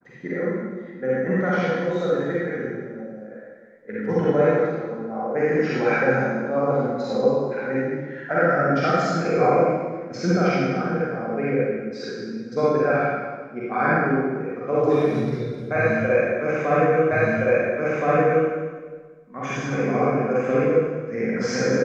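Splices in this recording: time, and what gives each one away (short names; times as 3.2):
17.11 repeat of the last 1.37 s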